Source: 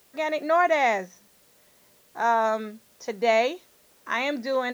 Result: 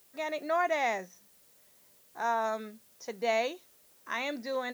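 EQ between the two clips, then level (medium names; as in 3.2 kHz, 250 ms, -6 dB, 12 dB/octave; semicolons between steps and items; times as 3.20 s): treble shelf 5.8 kHz +7.5 dB; -8.0 dB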